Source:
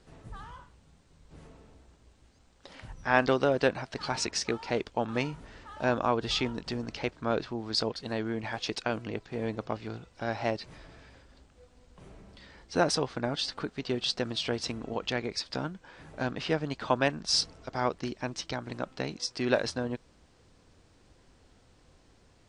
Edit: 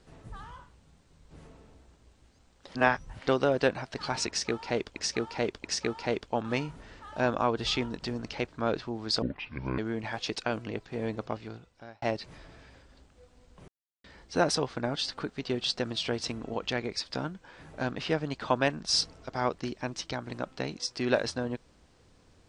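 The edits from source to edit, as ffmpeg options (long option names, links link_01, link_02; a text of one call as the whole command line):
ffmpeg -i in.wav -filter_complex "[0:a]asplit=10[link_01][link_02][link_03][link_04][link_05][link_06][link_07][link_08][link_09][link_10];[link_01]atrim=end=2.752[link_11];[link_02]atrim=start=2.748:end=3.272,asetpts=PTS-STARTPTS,areverse[link_12];[link_03]atrim=start=3.268:end=4.962[link_13];[link_04]atrim=start=4.278:end=4.962[link_14];[link_05]atrim=start=4.278:end=7.864[link_15];[link_06]atrim=start=7.86:end=8.18,asetpts=PTS-STARTPTS,asetrate=25137,aresample=44100[link_16];[link_07]atrim=start=8.176:end=10.42,asetpts=PTS-STARTPTS,afade=type=out:start_time=1.474:duration=0.77[link_17];[link_08]atrim=start=10.42:end=12.08,asetpts=PTS-STARTPTS,afade=type=in:duration=0.004:curve=hsin,afade=type=out:start_time=1.656:duration=0.004:curve=hsin[link_18];[link_09]atrim=start=12.08:end=12.44,asetpts=PTS-STARTPTS,volume=0[link_19];[link_10]atrim=start=12.44,asetpts=PTS-STARTPTS,afade=type=in:duration=0.004:curve=hsin[link_20];[link_11][link_12]acrossfade=duration=0.004:curve1=hsin:curve2=hsin[link_21];[link_21][link_13]acrossfade=duration=0.004:curve1=hsin:curve2=hsin[link_22];[link_22][link_14]acrossfade=duration=0.004:curve1=hsin:curve2=hsin[link_23];[link_23][link_15]acrossfade=duration=0.004:curve1=hsin:curve2=hsin[link_24];[link_24][link_16]acrossfade=duration=0.004:curve1=hsin:curve2=hsin[link_25];[link_17][link_18][link_19][link_20]concat=n=4:v=0:a=1[link_26];[link_25][link_26]acrossfade=duration=0.004:curve1=hsin:curve2=hsin" out.wav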